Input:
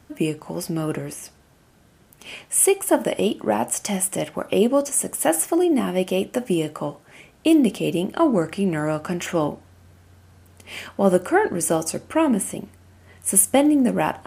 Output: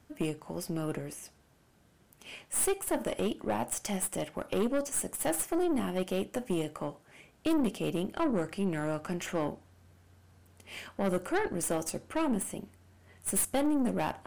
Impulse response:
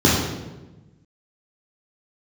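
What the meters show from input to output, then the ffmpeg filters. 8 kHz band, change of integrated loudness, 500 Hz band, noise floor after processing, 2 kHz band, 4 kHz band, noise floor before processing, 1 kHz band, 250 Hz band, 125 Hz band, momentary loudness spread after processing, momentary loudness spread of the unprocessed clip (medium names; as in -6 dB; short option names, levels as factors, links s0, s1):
-11.5 dB, -11.0 dB, -11.5 dB, -64 dBFS, -10.0 dB, -10.0 dB, -55 dBFS, -11.0 dB, -11.0 dB, -9.5 dB, 10 LU, 13 LU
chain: -af "aeval=exprs='(tanh(7.08*val(0)+0.5)-tanh(0.5))/7.08':c=same,volume=0.447"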